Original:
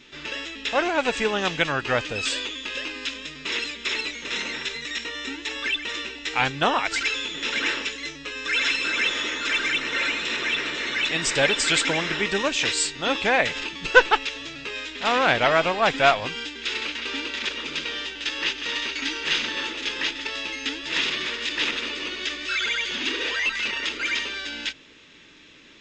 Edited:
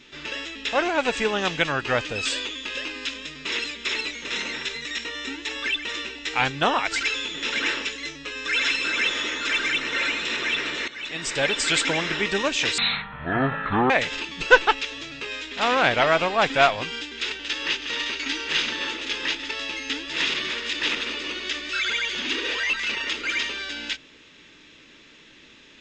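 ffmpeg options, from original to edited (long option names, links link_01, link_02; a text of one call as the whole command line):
ffmpeg -i in.wav -filter_complex "[0:a]asplit=5[link_01][link_02][link_03][link_04][link_05];[link_01]atrim=end=10.88,asetpts=PTS-STARTPTS,afade=type=out:start_time=10.876:duration=0.004:curve=hsin:silence=0.177828[link_06];[link_02]atrim=start=10.88:end=12.784,asetpts=PTS-STARTPTS,afade=type=in:duration=1.2:curve=qsin:silence=0.177828[link_07];[link_03]atrim=start=12.78:end=13.34,asetpts=PTS-STARTPTS,asetrate=22050,aresample=44100[link_08];[link_04]atrim=start=13.336:end=16.762[link_09];[link_05]atrim=start=18.078[link_10];[link_06][link_07]concat=n=2:v=0:a=1[link_11];[link_11][link_08]acrossfade=duration=0.004:curve1=hsin:curve2=hsin[link_12];[link_12][link_09]acrossfade=duration=0.004:curve1=hsin:curve2=hsin[link_13];[link_13][link_10]acrossfade=duration=0.004:curve1=hsin:curve2=hsin" out.wav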